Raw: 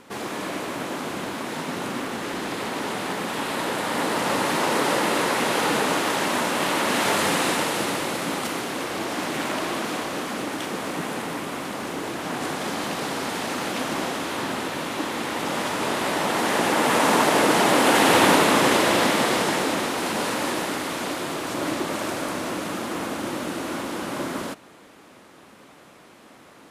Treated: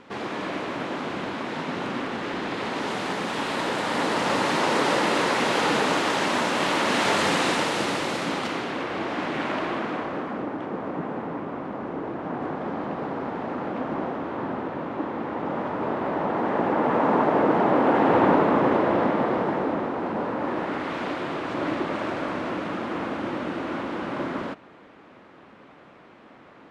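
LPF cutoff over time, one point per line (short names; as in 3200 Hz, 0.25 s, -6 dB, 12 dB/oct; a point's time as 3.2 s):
2.51 s 3800 Hz
2.94 s 6300 Hz
8.15 s 6300 Hz
8.85 s 2800 Hz
9.54 s 2800 Hz
10.53 s 1100 Hz
20.36 s 1100 Hz
20.96 s 2500 Hz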